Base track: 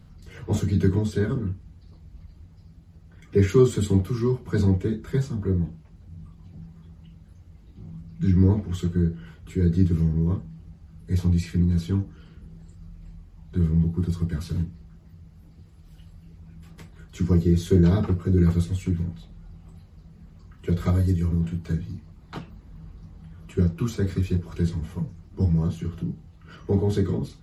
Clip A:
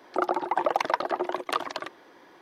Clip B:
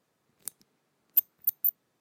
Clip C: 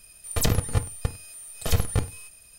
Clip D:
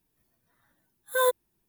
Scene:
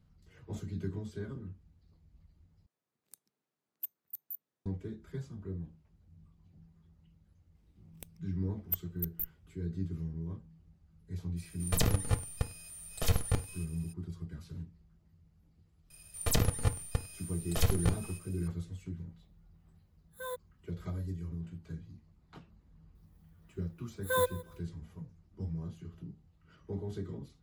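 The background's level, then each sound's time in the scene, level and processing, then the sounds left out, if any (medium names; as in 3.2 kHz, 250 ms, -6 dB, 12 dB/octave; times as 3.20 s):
base track -16.5 dB
2.66 s: replace with B -16.5 dB + high-pass 62 Hz
7.55 s: add B -10 dB + comb filter that takes the minimum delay 0.36 ms
11.36 s: add C -6 dB, fades 0.02 s
15.90 s: add C -5.5 dB
19.05 s: add D -17 dB
22.95 s: add D -5.5 dB + feedback delay 166 ms, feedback 23%, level -20 dB
not used: A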